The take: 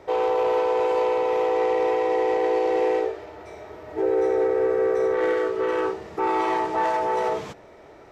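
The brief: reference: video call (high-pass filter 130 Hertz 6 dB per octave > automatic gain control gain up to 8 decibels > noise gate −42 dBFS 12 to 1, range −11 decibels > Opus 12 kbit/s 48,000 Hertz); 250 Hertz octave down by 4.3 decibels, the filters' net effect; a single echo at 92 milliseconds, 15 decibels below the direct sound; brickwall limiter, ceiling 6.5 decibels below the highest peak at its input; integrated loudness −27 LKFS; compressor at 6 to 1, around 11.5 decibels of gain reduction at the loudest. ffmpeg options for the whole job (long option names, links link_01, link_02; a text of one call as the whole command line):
ffmpeg -i in.wav -af "equalizer=frequency=250:width_type=o:gain=-7,acompressor=threshold=-33dB:ratio=6,alimiter=level_in=5.5dB:limit=-24dB:level=0:latency=1,volume=-5.5dB,highpass=frequency=130:poles=1,aecho=1:1:92:0.178,dynaudnorm=maxgain=8dB,agate=range=-11dB:threshold=-42dB:ratio=12,volume=11.5dB" -ar 48000 -c:a libopus -b:a 12k out.opus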